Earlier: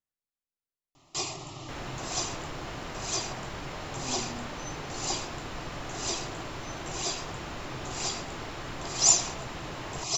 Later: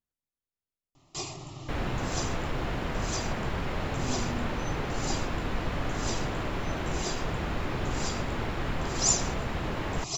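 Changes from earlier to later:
first sound -4.5 dB; second sound +4.5 dB; master: add bass shelf 310 Hz +8 dB

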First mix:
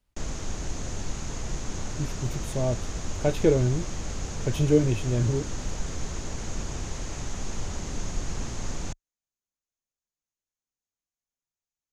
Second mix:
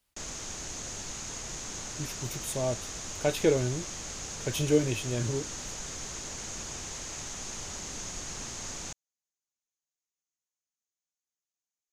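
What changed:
background -3.5 dB; master: add tilt EQ +2.5 dB/octave

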